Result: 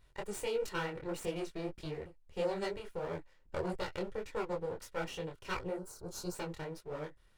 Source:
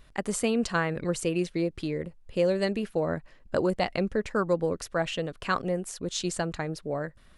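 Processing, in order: minimum comb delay 2.1 ms; spectral gain 5.77–6.34, 1600–3900 Hz -14 dB; detuned doubles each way 55 cents; gain -6 dB

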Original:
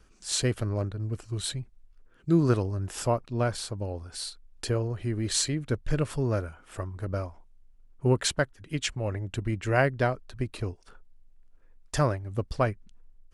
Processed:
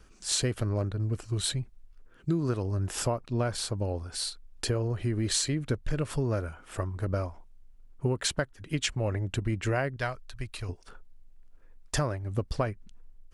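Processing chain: 9.96–10.69 bell 290 Hz -15 dB 2.9 oct; compressor 12:1, threshold -27 dBFS, peak gain reduction 11 dB; gain +3 dB

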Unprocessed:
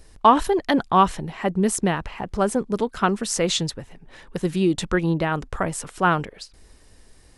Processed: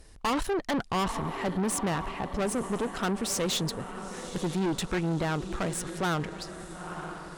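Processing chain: diffused feedback echo 0.937 s, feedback 53%, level -15 dB; tube stage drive 25 dB, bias 0.55

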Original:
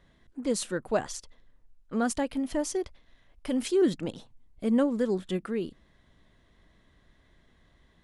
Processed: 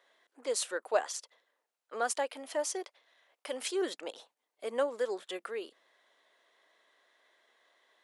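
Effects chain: HPF 480 Hz 24 dB/oct

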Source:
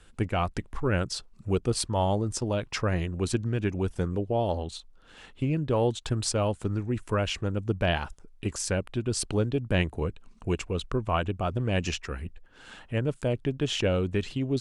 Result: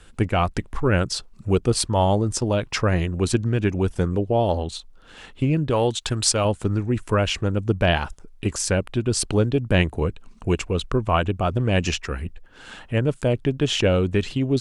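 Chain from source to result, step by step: 5.7–6.45 tilt shelf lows -4 dB; gain +6.5 dB

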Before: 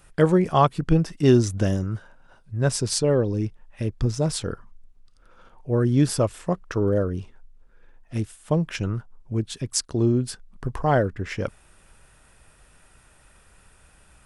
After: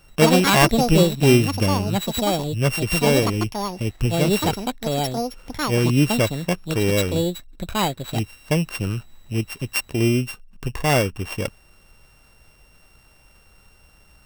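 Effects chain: sample sorter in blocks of 16 samples; echoes that change speed 84 ms, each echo +6 st, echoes 2; gain +1.5 dB

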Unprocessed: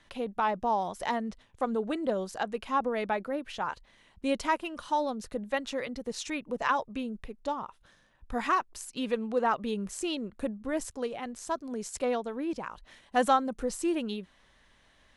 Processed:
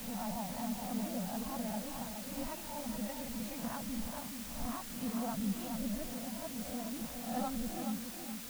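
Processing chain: spectral swells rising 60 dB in 1.02 s; EQ curve 220 Hz 0 dB, 400 Hz -27 dB, 670 Hz -11 dB, 1100 Hz -23 dB; granular stretch 0.56×, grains 50 ms; on a send: tape echo 0.422 s, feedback 40%, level -5 dB, low-pass 2400 Hz; on the sum: requantised 8-bit, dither triangular; gain +1 dB

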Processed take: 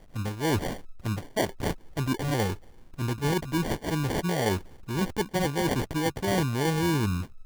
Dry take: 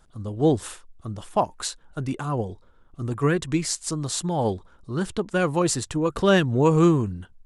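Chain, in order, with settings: reverse; compressor 6:1, threshold -30 dBFS, peak gain reduction 15.5 dB; reverse; sample-and-hold 34×; gain +6 dB

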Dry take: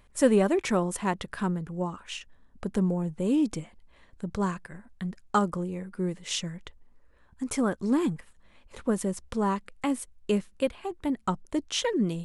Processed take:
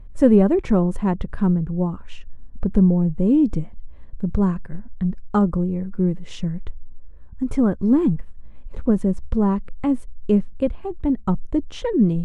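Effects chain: tilt -4.5 dB/oct

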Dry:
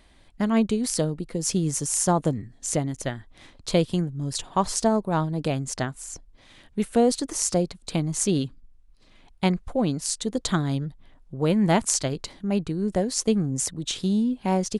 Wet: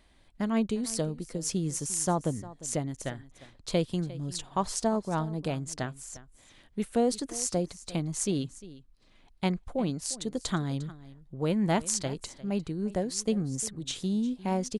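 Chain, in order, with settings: echo 0.352 s -18 dB; gain -6 dB

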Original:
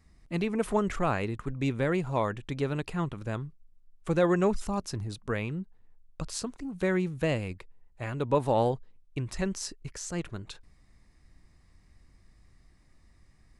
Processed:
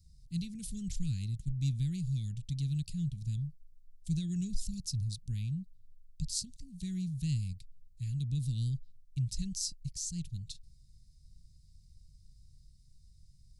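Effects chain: Chebyshev band-stop 150–4300 Hz, order 3; gain +2 dB

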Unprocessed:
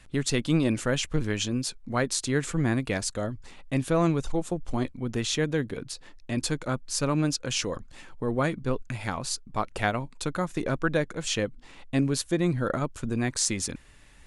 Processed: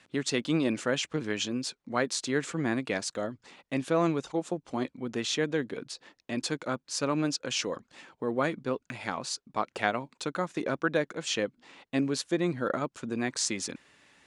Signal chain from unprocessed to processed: BPF 220–6900 Hz; gain -1 dB

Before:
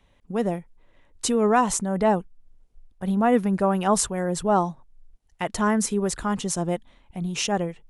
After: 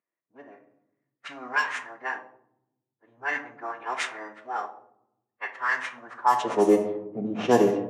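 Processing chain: in parallel at -5.5 dB: sample-rate reducer 6500 Hz, jitter 0%; on the sum: high-pass sweep 1900 Hz -> 300 Hz, 6.01–6.7; formant-preserving pitch shift -9 st; on a send at -4.5 dB: reverb RT60 1.0 s, pre-delay 3 ms; on the sum: low-pass opened by the level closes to 320 Hz, open at -15.5 dBFS; HPF 140 Hz 24 dB/oct

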